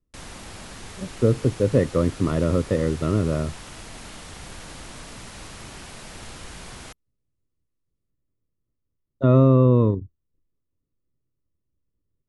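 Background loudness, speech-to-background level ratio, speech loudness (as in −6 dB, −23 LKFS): −39.5 LKFS, 18.5 dB, −21.0 LKFS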